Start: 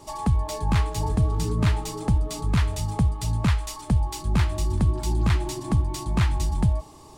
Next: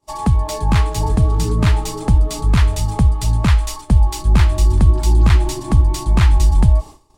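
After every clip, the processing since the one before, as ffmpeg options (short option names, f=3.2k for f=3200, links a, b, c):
-af "asubboost=boost=3:cutoff=65,agate=range=-33dB:threshold=-32dB:ratio=3:detection=peak,volume=7dB"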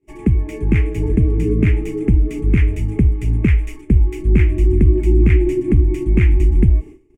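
-af "firequalizer=gain_entry='entry(140,0);entry(370,12);entry(580,-13);entry(1000,-21);entry(2200,6);entry(4000,-28);entry(6400,-16)':delay=0.05:min_phase=1,volume=-1dB"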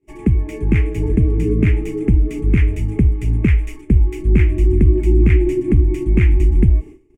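-af anull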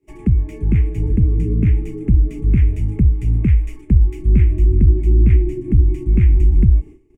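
-filter_complex "[0:a]acrossover=split=230[a][b];[b]acompressor=threshold=-52dB:ratio=1.5[c];[a][c]amix=inputs=2:normalize=0,volume=1dB"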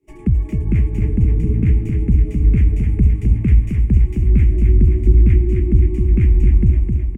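-af "aecho=1:1:261|522|783|1044|1305|1566|1827|2088:0.562|0.337|0.202|0.121|0.0729|0.0437|0.0262|0.0157,volume=-1dB"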